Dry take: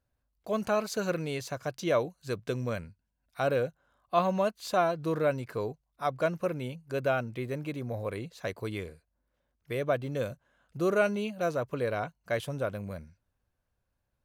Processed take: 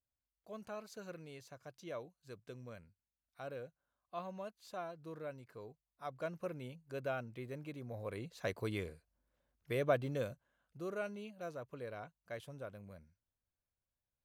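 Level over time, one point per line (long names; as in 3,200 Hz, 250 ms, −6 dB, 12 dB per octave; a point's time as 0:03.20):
0:05.61 −18 dB
0:06.47 −11 dB
0:07.88 −11 dB
0:08.48 −3.5 dB
0:10.02 −3.5 dB
0:10.84 −15 dB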